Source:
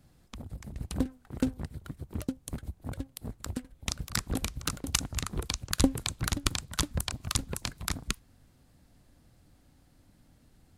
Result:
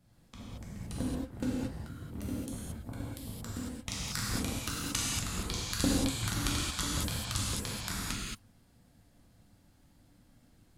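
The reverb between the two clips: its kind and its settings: non-linear reverb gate 0.25 s flat, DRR -6.5 dB; gain -8 dB

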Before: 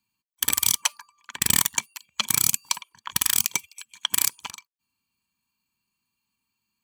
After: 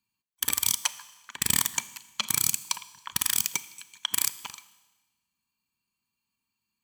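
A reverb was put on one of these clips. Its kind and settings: Schroeder reverb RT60 1.2 s, combs from 26 ms, DRR 15.5 dB; gain -4 dB

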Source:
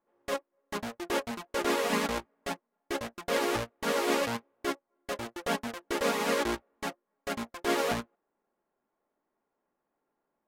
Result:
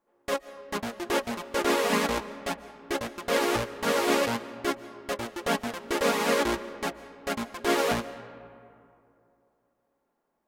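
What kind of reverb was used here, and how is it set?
digital reverb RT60 2.7 s, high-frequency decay 0.45×, pre-delay 0.1 s, DRR 14.5 dB; gain +3.5 dB

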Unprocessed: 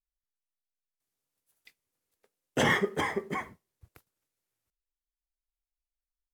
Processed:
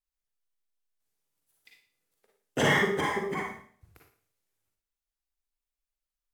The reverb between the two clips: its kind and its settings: Schroeder reverb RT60 0.5 s, DRR -0.5 dB; gain -1.5 dB

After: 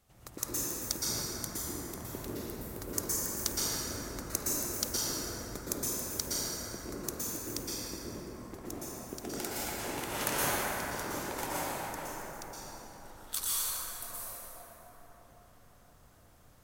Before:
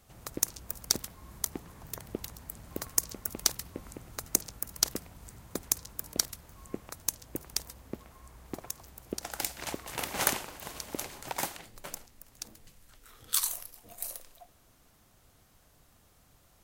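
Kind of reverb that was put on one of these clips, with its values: plate-style reverb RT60 4.9 s, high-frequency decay 0.35×, pre-delay 0.105 s, DRR -9.5 dB; gain -8 dB

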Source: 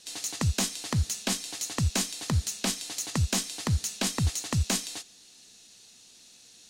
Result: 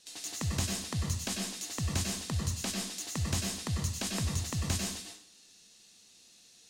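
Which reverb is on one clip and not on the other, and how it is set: plate-style reverb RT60 0.55 s, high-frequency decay 0.85×, pre-delay 85 ms, DRR 0 dB; gain -7.5 dB

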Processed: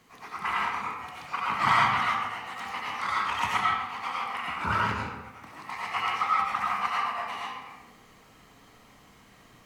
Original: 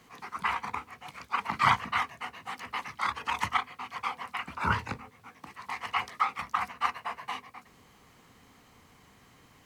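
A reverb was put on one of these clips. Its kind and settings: digital reverb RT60 0.94 s, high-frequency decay 0.75×, pre-delay 50 ms, DRR -5 dB; gain -2.5 dB

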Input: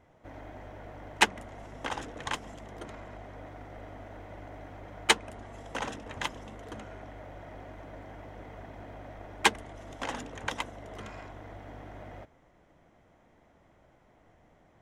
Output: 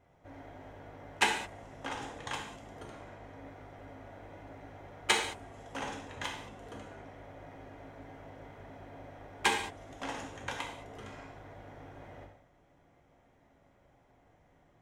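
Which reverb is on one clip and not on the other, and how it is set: non-linear reverb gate 0.24 s falling, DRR -0.5 dB; gain -6.5 dB

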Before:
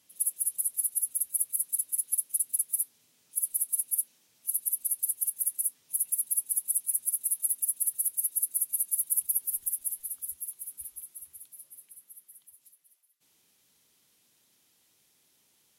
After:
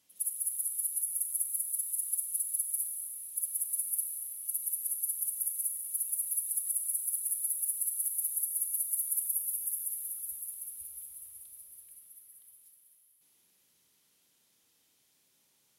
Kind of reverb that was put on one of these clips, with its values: Schroeder reverb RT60 3.7 s, combs from 32 ms, DRR 2 dB; gain -5 dB

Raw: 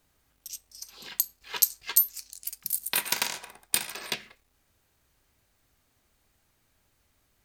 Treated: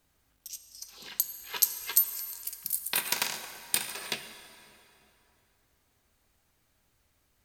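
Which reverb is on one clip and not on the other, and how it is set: plate-style reverb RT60 3.2 s, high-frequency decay 0.7×, pre-delay 0 ms, DRR 8.5 dB; gain -2 dB

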